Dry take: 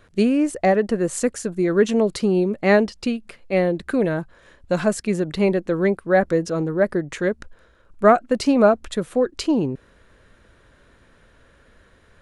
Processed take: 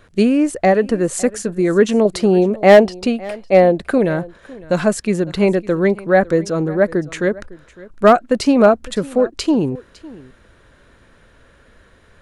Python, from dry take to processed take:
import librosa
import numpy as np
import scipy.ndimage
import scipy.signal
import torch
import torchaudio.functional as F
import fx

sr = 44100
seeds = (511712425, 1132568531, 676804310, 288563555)

p1 = fx.peak_eq(x, sr, hz=680.0, db=9.5, octaves=0.81, at=(2.05, 3.98))
p2 = np.clip(p1, -10.0 ** (-6.0 / 20.0), 10.0 ** (-6.0 / 20.0))
p3 = p2 + fx.echo_single(p2, sr, ms=556, db=-20.5, dry=0)
y = p3 * librosa.db_to_amplitude(4.0)